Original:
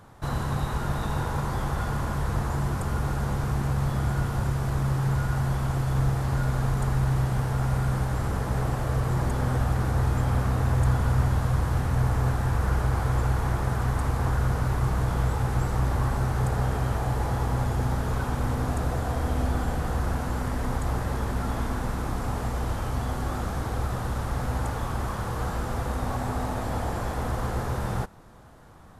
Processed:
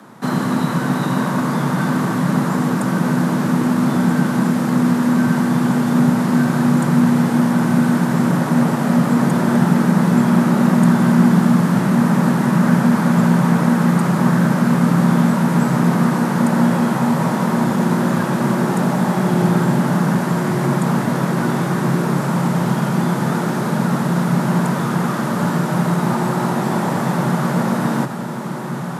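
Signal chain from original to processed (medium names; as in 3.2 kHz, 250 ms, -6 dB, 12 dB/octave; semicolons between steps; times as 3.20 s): frequency shift +110 Hz; echo that smears into a reverb 1589 ms, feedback 79%, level -10.5 dB; trim +9 dB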